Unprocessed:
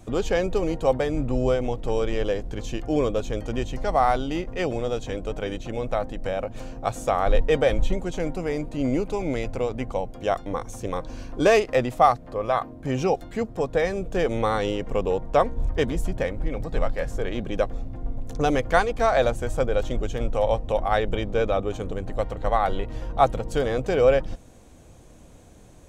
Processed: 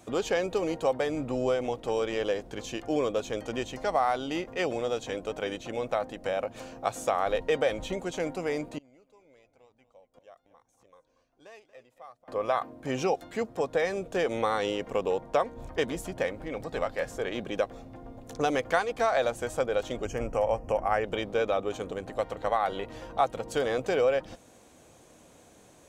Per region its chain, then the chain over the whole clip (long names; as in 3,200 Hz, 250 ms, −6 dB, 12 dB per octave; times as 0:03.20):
0:08.78–0:12.28: flanger 1.1 Hz, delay 1 ms, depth 1.1 ms, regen +46% + single-tap delay 233 ms −15 dB + gate with flip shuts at −30 dBFS, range −25 dB
0:20.05–0:21.04: Butterworth band-reject 3,700 Hz, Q 2 + low-shelf EQ 130 Hz +9 dB
whole clip: high-pass filter 400 Hz 6 dB per octave; downward compressor 2.5 to 1, threshold −23 dBFS